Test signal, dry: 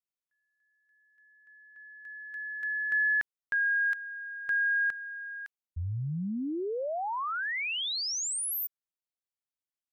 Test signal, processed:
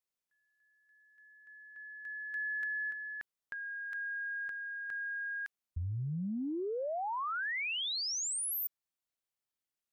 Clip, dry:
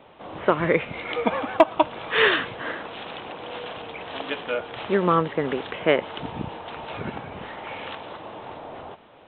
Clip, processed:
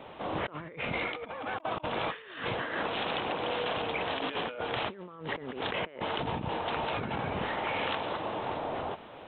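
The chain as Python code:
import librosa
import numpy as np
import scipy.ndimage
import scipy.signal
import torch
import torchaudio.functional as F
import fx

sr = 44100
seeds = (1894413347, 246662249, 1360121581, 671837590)

y = fx.over_compress(x, sr, threshold_db=-35.0, ratio=-1.0)
y = F.gain(torch.from_numpy(y), -2.0).numpy()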